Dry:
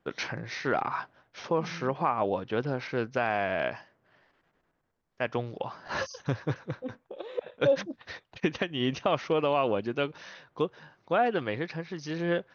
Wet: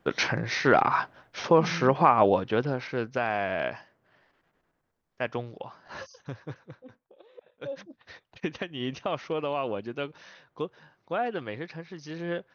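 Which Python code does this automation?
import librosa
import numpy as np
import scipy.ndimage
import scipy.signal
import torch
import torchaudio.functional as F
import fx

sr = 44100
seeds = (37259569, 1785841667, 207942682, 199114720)

y = fx.gain(x, sr, db=fx.line((2.26, 7.5), (2.86, 0.0), (5.25, 0.0), (5.89, -8.5), (6.49, -8.5), (7.43, -16.5), (8.27, -4.0)))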